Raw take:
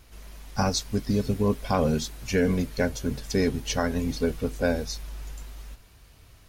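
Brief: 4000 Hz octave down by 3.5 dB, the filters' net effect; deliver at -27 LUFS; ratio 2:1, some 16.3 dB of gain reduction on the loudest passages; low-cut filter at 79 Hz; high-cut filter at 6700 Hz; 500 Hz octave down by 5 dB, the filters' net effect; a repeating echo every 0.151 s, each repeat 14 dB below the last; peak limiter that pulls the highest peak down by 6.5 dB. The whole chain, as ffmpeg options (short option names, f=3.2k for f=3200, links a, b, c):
-af "highpass=79,lowpass=6.7k,equalizer=f=500:t=o:g=-6,equalizer=f=4k:t=o:g=-3.5,acompressor=threshold=-53dB:ratio=2,alimiter=level_in=11.5dB:limit=-24dB:level=0:latency=1,volume=-11.5dB,aecho=1:1:151|302:0.2|0.0399,volume=20dB"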